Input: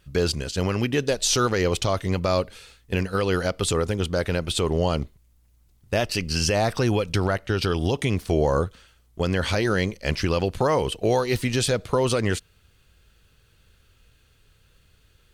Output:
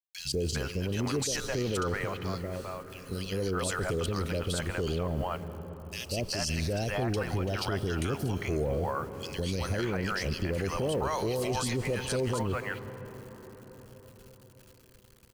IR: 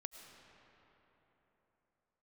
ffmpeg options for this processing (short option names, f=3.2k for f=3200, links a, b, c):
-filter_complex "[0:a]asettb=1/sr,asplit=3[a][b][c];[a]atrim=end=1.804[d];[b]atrim=start=1.8:end=3.07,asetpts=PTS-STARTPTS,afade=t=in:d=0.004:c=qsin,afade=t=out:st=1.266:d=0.004:c=qsin,acompressor=threshold=-35dB:ratio=2[e];[c]atrim=start=3.066[f];[d][e]acrossfade=d=0.004:c1=hsin:c2=qsin[g];[g][f]acrossfade=d=0.004:c1=qsin:c2=hsin,acrossover=split=640|2500[h][i][j];[h]adelay=190[k];[i]adelay=400[l];[k][l][j]amix=inputs=3:normalize=0,acrusher=bits=8:mix=0:aa=0.000001,highshelf=f=10k:g=4,bandreject=f=3.6k:w=12,asplit=2[m][n];[1:a]atrim=start_sample=2205,asetrate=29547,aresample=44100[o];[n][o]afir=irnorm=-1:irlink=0,volume=-4dB[p];[m][p]amix=inputs=2:normalize=0,alimiter=limit=-16.5dB:level=0:latency=1:release=13,volume=-5.5dB"